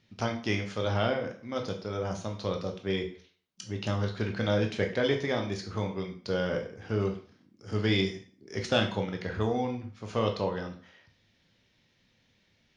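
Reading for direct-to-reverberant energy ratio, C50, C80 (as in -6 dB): 3.0 dB, 9.5 dB, 14.5 dB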